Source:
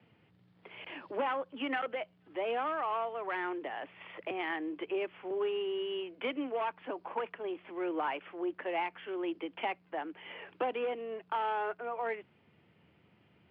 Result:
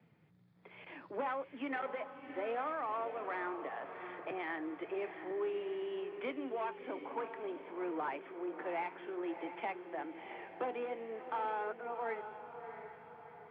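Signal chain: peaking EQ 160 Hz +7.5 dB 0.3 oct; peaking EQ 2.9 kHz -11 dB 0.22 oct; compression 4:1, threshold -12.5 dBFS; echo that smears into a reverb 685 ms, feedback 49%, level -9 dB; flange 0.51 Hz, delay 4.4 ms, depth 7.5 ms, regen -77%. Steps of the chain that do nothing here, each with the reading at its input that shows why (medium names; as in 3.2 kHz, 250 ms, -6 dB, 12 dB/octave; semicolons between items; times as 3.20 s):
compression, threshold -12.5 dBFS: peak at its input -22.0 dBFS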